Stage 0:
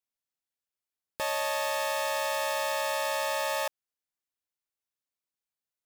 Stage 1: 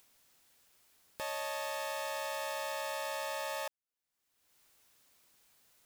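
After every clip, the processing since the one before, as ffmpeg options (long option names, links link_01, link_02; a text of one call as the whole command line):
ffmpeg -i in.wav -af "acompressor=mode=upward:threshold=-34dB:ratio=2.5,volume=-8dB" out.wav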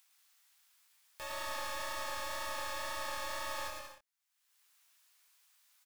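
ffmpeg -i in.wav -filter_complex "[0:a]flanger=delay=16:depth=7.6:speed=2,acrossover=split=830[link_01][link_02];[link_01]acrusher=bits=6:dc=4:mix=0:aa=0.000001[link_03];[link_03][link_02]amix=inputs=2:normalize=0,aecho=1:1:110|187|240.9|278.6|305:0.631|0.398|0.251|0.158|0.1" out.wav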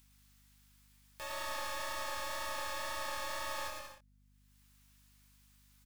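ffmpeg -i in.wav -af "aeval=exprs='val(0)+0.000501*(sin(2*PI*50*n/s)+sin(2*PI*2*50*n/s)/2+sin(2*PI*3*50*n/s)/3+sin(2*PI*4*50*n/s)/4+sin(2*PI*5*50*n/s)/5)':channel_layout=same" out.wav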